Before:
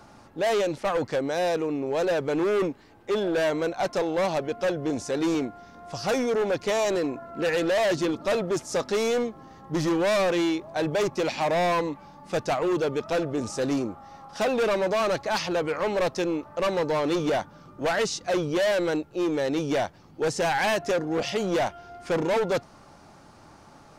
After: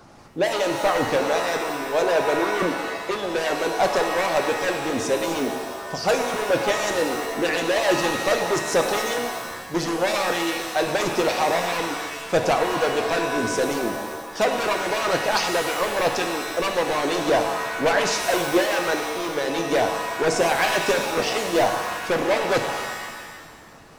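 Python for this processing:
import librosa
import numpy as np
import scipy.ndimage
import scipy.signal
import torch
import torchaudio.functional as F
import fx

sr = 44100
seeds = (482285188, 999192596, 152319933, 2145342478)

y = fx.hpss(x, sr, part='harmonic', gain_db=-14)
y = fx.rev_shimmer(y, sr, seeds[0], rt60_s=1.4, semitones=7, shimmer_db=-2, drr_db=5.0)
y = F.gain(torch.from_numpy(y), 6.5).numpy()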